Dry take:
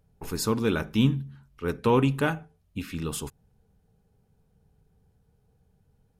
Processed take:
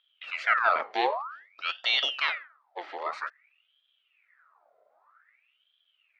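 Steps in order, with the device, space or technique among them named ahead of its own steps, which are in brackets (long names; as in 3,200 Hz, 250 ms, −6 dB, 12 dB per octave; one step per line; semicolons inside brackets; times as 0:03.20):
0:00.90–0:02.22: high-shelf EQ 2,300 Hz +8.5 dB
voice changer toy (ring modulator whose carrier an LFO sweeps 1,900 Hz, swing 70%, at 0.52 Hz; loudspeaker in its box 550–4,000 Hz, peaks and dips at 620 Hz +5 dB, 880 Hz −3 dB, 1,300 Hz +9 dB, 1,900 Hz +3 dB, 3,000 Hz −5 dB)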